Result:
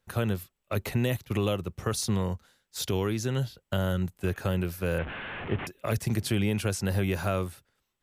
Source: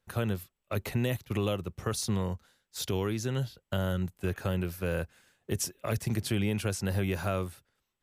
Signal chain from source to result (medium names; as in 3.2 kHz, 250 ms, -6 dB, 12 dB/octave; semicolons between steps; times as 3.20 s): 4.98–5.67 s: one-bit delta coder 16 kbps, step -33.5 dBFS; trim +2.5 dB